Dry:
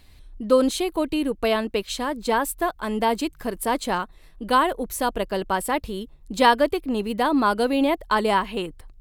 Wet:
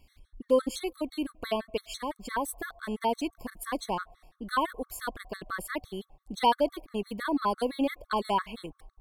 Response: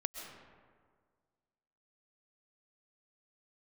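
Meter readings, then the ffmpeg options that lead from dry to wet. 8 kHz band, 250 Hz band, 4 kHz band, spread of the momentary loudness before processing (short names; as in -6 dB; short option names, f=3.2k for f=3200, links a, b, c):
-9.0 dB, -9.0 dB, -8.5 dB, 10 LU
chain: -filter_complex "[0:a]asplit=2[a][b];[b]asplit=3[c][d][e];[c]bandpass=f=730:t=q:w=8,volume=0dB[f];[d]bandpass=f=1.09k:t=q:w=8,volume=-6dB[g];[e]bandpass=f=2.44k:t=q:w=8,volume=-9dB[h];[f][g][h]amix=inputs=3:normalize=0[i];[1:a]atrim=start_sample=2205,lowpass=1.6k,adelay=6[j];[i][j]afir=irnorm=-1:irlink=0,volume=-16dB[k];[a][k]amix=inputs=2:normalize=0,afftfilt=real='re*gt(sin(2*PI*5.9*pts/sr)*(1-2*mod(floor(b*sr/1024/1100),2)),0)':imag='im*gt(sin(2*PI*5.9*pts/sr)*(1-2*mod(floor(b*sr/1024/1100),2)),0)':win_size=1024:overlap=0.75,volume=-5.5dB"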